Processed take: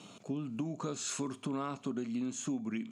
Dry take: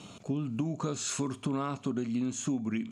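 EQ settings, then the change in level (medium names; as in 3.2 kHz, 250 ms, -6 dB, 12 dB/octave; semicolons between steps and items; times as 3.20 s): high-pass 160 Hz 12 dB/octave; -3.5 dB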